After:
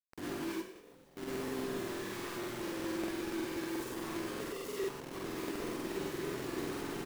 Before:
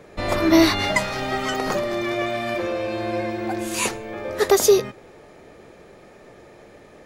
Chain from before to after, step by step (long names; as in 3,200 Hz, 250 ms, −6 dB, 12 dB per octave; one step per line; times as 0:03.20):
compressor on every frequency bin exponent 0.6
camcorder AGC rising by 24 dB per second
inverse Chebyshev low-pass filter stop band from 800 Hz, stop band 50 dB
first difference
downward compressor 3 to 1, threshold −53 dBFS, peak gain reduction 8.5 dB
log-companded quantiser 4 bits
0:00.55–0:01.17: tube saturation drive 71 dB, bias 0.65
echo with shifted repeats 96 ms, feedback 50%, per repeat +46 Hz, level −13.5 dB
convolution reverb RT60 0.35 s, pre-delay 45 ms, DRR −4 dB
regular buffer underruns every 0.12 s, samples 2,048, repeat, from 0:00.71
level +8.5 dB